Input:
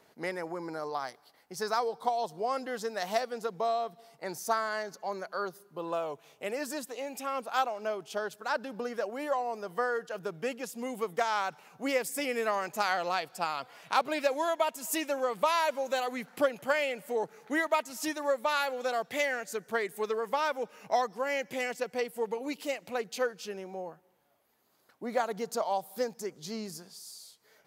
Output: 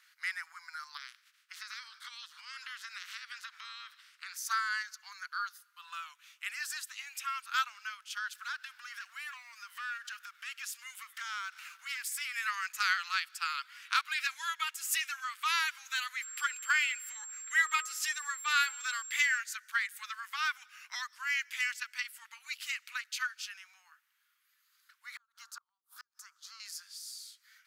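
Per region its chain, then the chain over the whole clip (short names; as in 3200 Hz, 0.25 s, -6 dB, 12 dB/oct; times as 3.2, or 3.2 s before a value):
0.96–4.35 spectral limiter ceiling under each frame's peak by 28 dB + compressor, threshold -38 dBFS + LPF 2300 Hz 6 dB/oct
8.35–12.34 compressor 2:1, threshold -47 dBFS + sample leveller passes 2
16.21–19.37 de-hum 210.5 Hz, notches 7 + whine 7500 Hz -44 dBFS + resonant low shelf 530 Hz -11.5 dB, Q 1.5
25.16–26.6 resonant high shelf 1600 Hz -8 dB, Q 3 + flipped gate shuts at -21 dBFS, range -42 dB + three-band squash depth 40%
whole clip: steep high-pass 1300 Hz 48 dB/oct; high shelf 8800 Hz -5.5 dB; gain +4 dB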